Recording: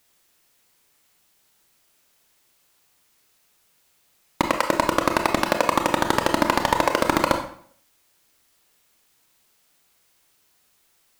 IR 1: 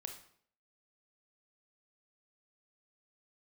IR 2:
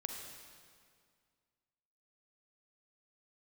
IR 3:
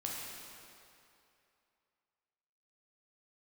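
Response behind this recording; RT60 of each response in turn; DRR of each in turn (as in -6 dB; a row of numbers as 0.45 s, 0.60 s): 1; 0.60 s, 2.1 s, 2.7 s; 4.0 dB, 2.5 dB, -3.5 dB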